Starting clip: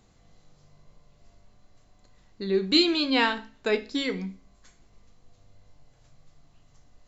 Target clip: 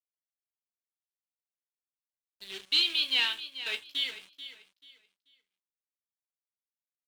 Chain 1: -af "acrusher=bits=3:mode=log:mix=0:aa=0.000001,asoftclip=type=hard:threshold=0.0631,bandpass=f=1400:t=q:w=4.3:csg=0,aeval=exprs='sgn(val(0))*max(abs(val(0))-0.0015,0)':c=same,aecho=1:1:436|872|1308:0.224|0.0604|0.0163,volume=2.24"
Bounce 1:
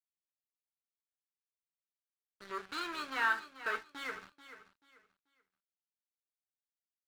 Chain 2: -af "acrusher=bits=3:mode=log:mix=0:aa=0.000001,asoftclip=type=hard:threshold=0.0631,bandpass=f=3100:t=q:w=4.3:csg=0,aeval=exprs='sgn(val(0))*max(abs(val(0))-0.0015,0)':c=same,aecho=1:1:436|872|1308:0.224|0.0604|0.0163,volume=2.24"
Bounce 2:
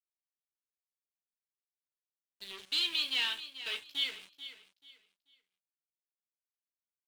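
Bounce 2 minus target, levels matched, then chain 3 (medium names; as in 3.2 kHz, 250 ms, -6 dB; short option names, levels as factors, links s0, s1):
hard clipper: distortion +9 dB
-af "acrusher=bits=3:mode=log:mix=0:aa=0.000001,asoftclip=type=hard:threshold=0.168,bandpass=f=3100:t=q:w=4.3:csg=0,aeval=exprs='sgn(val(0))*max(abs(val(0))-0.0015,0)':c=same,aecho=1:1:436|872|1308:0.224|0.0604|0.0163,volume=2.24"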